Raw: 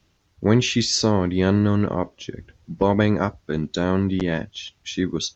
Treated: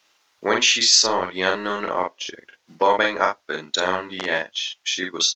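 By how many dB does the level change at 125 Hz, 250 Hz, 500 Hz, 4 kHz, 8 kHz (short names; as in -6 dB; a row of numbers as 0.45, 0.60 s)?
-21.0 dB, -11.5 dB, -0.5 dB, +8.0 dB, n/a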